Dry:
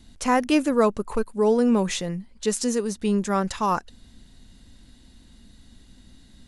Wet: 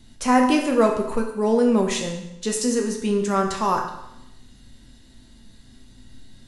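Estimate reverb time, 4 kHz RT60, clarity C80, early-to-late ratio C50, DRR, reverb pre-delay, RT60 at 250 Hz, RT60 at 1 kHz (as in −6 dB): 0.85 s, 0.80 s, 8.5 dB, 6.0 dB, 1.5 dB, 8 ms, 0.85 s, 0.85 s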